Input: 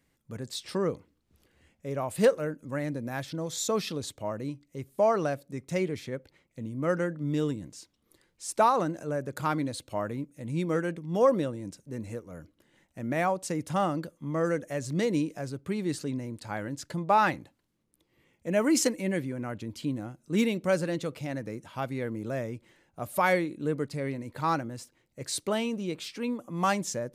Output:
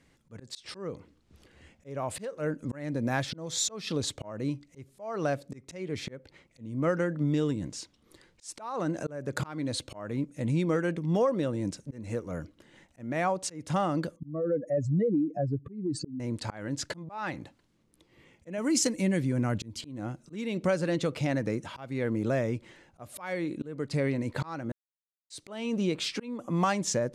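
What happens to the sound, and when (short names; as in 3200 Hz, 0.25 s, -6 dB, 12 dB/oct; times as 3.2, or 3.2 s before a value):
14.16–16.2 spectral contrast raised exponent 2.3
18.58–19.81 tone controls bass +7 dB, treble +8 dB
24.72–25.3 mute
whole clip: LPF 7900 Hz 12 dB/oct; compressor 5:1, threshold -32 dBFS; auto swell 0.309 s; gain +8 dB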